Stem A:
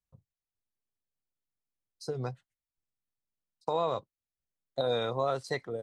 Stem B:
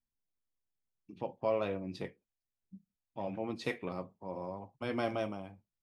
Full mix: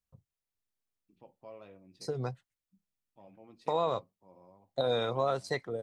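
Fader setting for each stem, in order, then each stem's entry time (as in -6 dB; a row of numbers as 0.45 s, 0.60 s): 0.0 dB, -17.5 dB; 0.00 s, 0.00 s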